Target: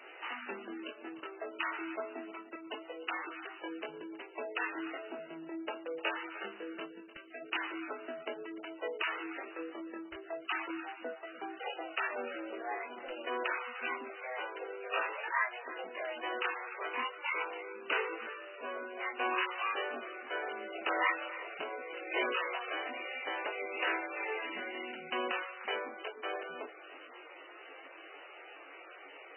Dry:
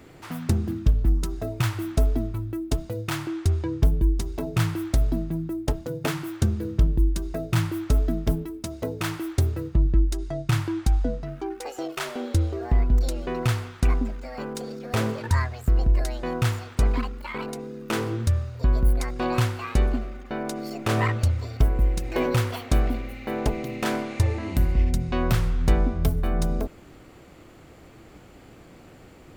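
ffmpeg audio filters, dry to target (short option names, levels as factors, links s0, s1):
-filter_complex "[0:a]highpass=f=400:w=0.5412,highpass=f=400:w=1.3066,asplit=3[s0][s1][s2];[s0]afade=t=out:st=6.85:d=0.02[s3];[s1]equalizer=f=640:t=o:w=2.5:g=-9.5,afade=t=in:st=6.85:d=0.02,afade=t=out:st=7.4:d=0.02[s4];[s2]afade=t=in:st=7.4:d=0.02[s5];[s3][s4][s5]amix=inputs=3:normalize=0,asplit=2[s6][s7];[s7]acompressor=threshold=0.00794:ratio=16,volume=0.891[s8];[s6][s8]amix=inputs=2:normalize=0,crystalizer=i=9.5:c=0,asoftclip=type=tanh:threshold=0.447,aresample=11025,aresample=44100,flanger=delay=19:depth=5.2:speed=0.26,asplit=2[s9][s10];[s10]adelay=25,volume=0.299[s11];[s9][s11]amix=inputs=2:normalize=0,asplit=2[s12][s13];[s13]aecho=0:1:301|602:0.168|0.0336[s14];[s12][s14]amix=inputs=2:normalize=0,asettb=1/sr,asplit=3[s15][s16][s17];[s15]atrim=end=25.304[s18];[s16]atrim=start=25.3:end=26.25,asetpts=PTS-STARTPTS,afade=t=in:d=0.004:c=qsin,afade=t=out:st=0.946:d=0.004:c=qsin,aeval=exprs='sgn(val(0))*max(abs(val(0))-0.00531,0)':c=same[s19];[s17]atrim=start=26.246[s20];[s18][s19]acrossfade=d=0.004:c1=hsin:c2=qsin[s21];[s21][s20]acrossfade=d=0.004:c1=qsin:c2=hsin,volume=0.473" -ar 16000 -c:a libmp3lame -b:a 8k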